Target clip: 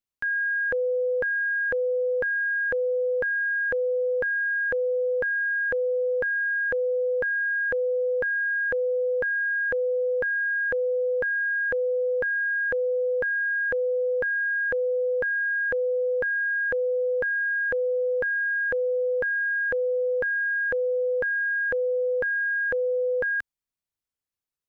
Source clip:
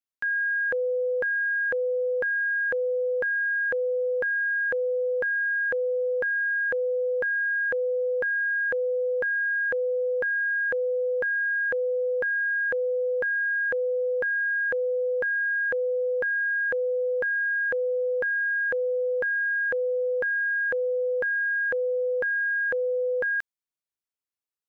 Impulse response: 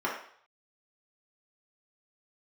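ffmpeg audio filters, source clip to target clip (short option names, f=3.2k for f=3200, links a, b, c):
-af "lowshelf=f=160:g=11.5"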